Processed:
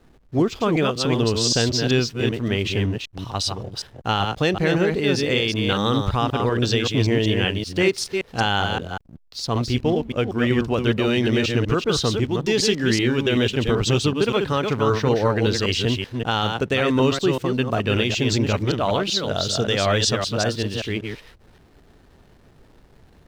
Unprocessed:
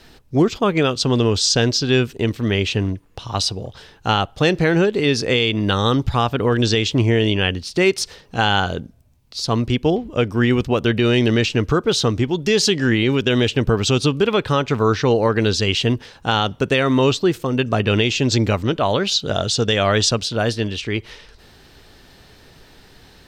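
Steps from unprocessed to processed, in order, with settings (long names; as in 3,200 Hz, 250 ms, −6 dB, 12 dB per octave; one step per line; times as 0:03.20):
delay that plays each chunk backwards 191 ms, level −4.5 dB
slack as between gear wheels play −39.5 dBFS
level −4 dB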